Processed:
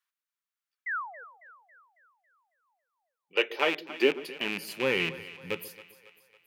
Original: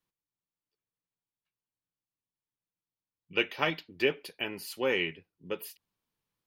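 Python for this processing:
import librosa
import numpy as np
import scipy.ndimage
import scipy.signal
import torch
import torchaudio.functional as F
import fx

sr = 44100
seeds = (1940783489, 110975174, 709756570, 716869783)

y = fx.rattle_buzz(x, sr, strikes_db=-43.0, level_db=-20.0)
y = fx.spec_paint(y, sr, seeds[0], shape='fall', start_s=0.86, length_s=0.38, low_hz=440.0, high_hz=2100.0, level_db=-37.0)
y = fx.echo_split(y, sr, split_hz=540.0, low_ms=131, high_ms=275, feedback_pct=52, wet_db=-15.5)
y = fx.filter_sweep_highpass(y, sr, from_hz=1400.0, to_hz=110.0, start_s=2.26, end_s=5.15, q=2.1)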